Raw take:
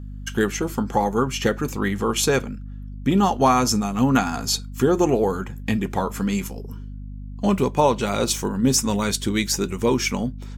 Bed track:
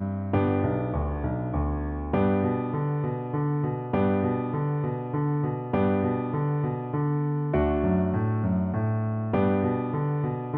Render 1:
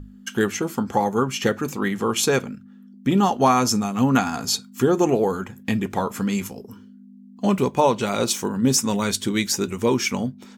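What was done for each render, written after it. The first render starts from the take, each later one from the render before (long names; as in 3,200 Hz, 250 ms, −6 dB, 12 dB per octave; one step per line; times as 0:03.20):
mains-hum notches 50/100/150 Hz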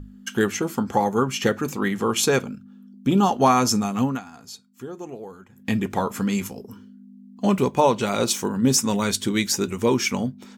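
0:02.43–0:03.29: parametric band 1,900 Hz −15 dB 0.22 octaves
0:03.96–0:05.73: duck −17 dB, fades 0.24 s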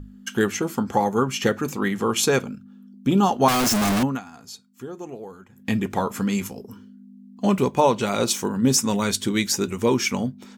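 0:03.48–0:04.03: sign of each sample alone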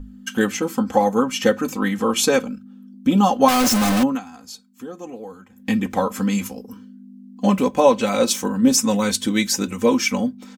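dynamic equaliser 560 Hz, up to +5 dB, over −38 dBFS, Q 7.5
comb filter 3.9 ms, depth 79%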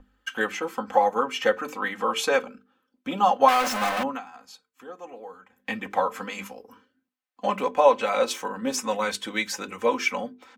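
three-way crossover with the lows and the highs turned down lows −17 dB, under 490 Hz, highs −13 dB, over 3,100 Hz
mains-hum notches 50/100/150/200/250/300/350/400/450 Hz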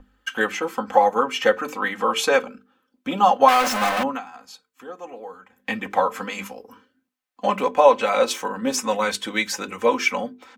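level +4 dB
brickwall limiter −2 dBFS, peak gain reduction 1.5 dB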